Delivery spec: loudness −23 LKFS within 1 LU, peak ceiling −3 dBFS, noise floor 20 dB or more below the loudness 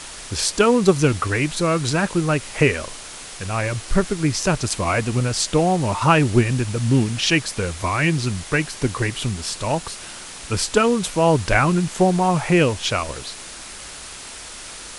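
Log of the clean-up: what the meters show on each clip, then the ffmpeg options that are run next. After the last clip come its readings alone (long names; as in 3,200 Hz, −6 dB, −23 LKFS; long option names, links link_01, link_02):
background noise floor −37 dBFS; target noise floor −40 dBFS; integrated loudness −20.0 LKFS; sample peak −2.0 dBFS; target loudness −23.0 LKFS
→ -af "afftdn=noise_reduction=6:noise_floor=-37"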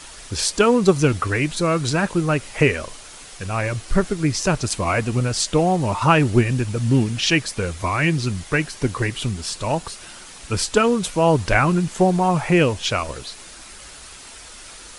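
background noise floor −41 dBFS; integrated loudness −20.0 LKFS; sample peak −2.0 dBFS; target loudness −23.0 LKFS
→ -af "volume=-3dB"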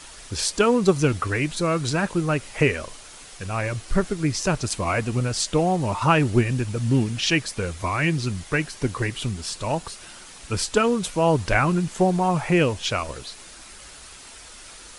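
integrated loudness −23.0 LKFS; sample peak −5.0 dBFS; background noise floor −44 dBFS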